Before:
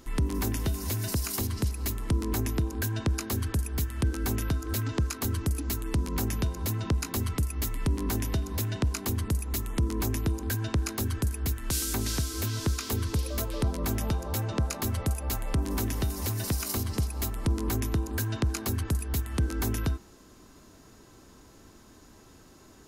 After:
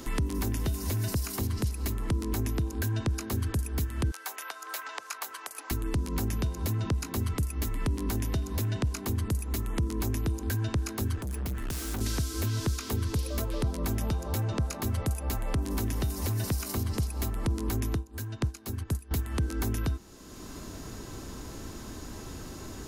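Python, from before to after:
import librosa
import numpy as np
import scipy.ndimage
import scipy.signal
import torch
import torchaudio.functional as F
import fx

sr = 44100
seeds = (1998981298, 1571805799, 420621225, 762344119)

y = fx.highpass(x, sr, hz=710.0, slope=24, at=(4.11, 5.71))
y = fx.clip_hard(y, sr, threshold_db=-34.5, at=(11.15, 12.01))
y = fx.upward_expand(y, sr, threshold_db=-34.0, expansion=2.5, at=(17.95, 19.11))
y = fx.low_shelf(y, sr, hz=440.0, db=3.0)
y = fx.band_squash(y, sr, depth_pct=70)
y = F.gain(torch.from_numpy(y), -3.5).numpy()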